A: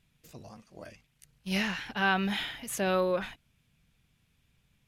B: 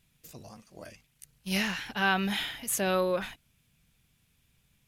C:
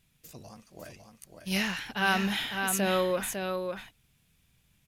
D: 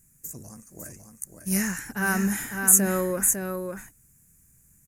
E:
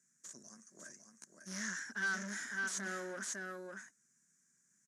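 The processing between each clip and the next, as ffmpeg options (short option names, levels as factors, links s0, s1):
-af "highshelf=f=6500:g=10"
-af "aecho=1:1:552:0.531"
-af "firequalizer=gain_entry='entry(290,0);entry(670,-10);entry(1700,-3);entry(3300,-26);entry(6900,11);entry(14000,8)':delay=0.05:min_phase=1,volume=1.88"
-af "aeval=exprs='(tanh(28.2*val(0)+0.5)-tanh(0.5))/28.2':c=same,highpass=f=230:w=0.5412,highpass=f=230:w=1.3066,equalizer=f=300:t=q:w=4:g=-9,equalizer=f=480:t=q:w=4:g=-9,equalizer=f=810:t=q:w=4:g=-10,equalizer=f=1600:t=q:w=4:g=7,equalizer=f=2600:t=q:w=4:g=-8,equalizer=f=5800:t=q:w=4:g=8,lowpass=f=7300:w=0.5412,lowpass=f=7300:w=1.3066,volume=0.501"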